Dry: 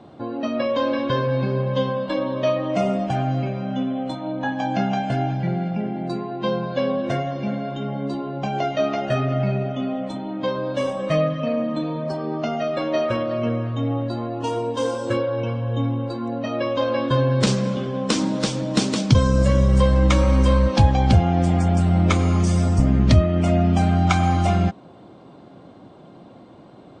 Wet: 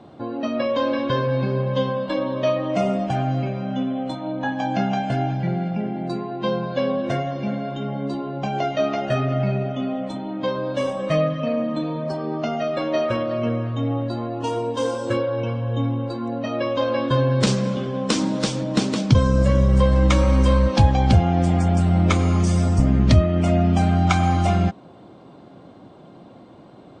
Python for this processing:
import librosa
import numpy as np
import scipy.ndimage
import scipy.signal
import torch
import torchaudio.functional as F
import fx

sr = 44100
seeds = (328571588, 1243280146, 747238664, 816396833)

y = fx.high_shelf(x, sr, hz=4100.0, db=-6.0, at=(18.63, 19.92))